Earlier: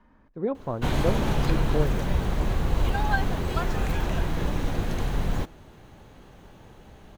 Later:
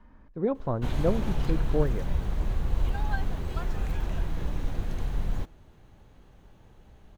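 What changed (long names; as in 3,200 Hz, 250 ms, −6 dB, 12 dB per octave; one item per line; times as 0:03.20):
background −9.5 dB
master: add low-shelf EQ 92 Hz +9.5 dB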